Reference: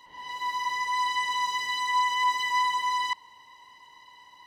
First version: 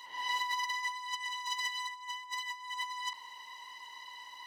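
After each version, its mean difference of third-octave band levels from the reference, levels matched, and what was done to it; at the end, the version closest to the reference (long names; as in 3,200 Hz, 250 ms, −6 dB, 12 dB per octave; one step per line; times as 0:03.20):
6.5 dB: high-pass filter 1,300 Hz 6 dB per octave
compressor whose output falls as the input rises −36 dBFS, ratio −0.5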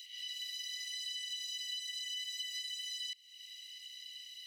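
11.5 dB: Butterworth high-pass 2,300 Hz 72 dB per octave
downward compressor 4 to 1, threshold −52 dBFS, peak gain reduction 17 dB
level +10 dB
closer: first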